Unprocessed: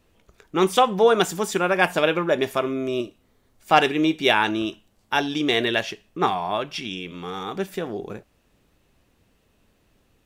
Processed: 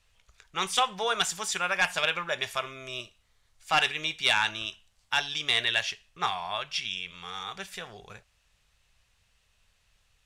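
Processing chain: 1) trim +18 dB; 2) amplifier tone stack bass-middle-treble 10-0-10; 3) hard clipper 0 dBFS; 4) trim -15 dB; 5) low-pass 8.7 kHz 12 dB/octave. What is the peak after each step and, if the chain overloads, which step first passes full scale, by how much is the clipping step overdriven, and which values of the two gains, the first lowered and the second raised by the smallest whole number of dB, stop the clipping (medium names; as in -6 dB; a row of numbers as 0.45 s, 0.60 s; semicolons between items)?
+14.5 dBFS, +10.0 dBFS, 0.0 dBFS, -15.0 dBFS, -14.0 dBFS; step 1, 10.0 dB; step 1 +8 dB, step 4 -5 dB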